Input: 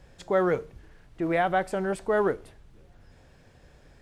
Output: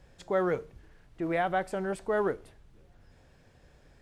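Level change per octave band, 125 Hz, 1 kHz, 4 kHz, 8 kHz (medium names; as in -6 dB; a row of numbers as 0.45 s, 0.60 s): -4.0 dB, -4.0 dB, -4.0 dB, -4.0 dB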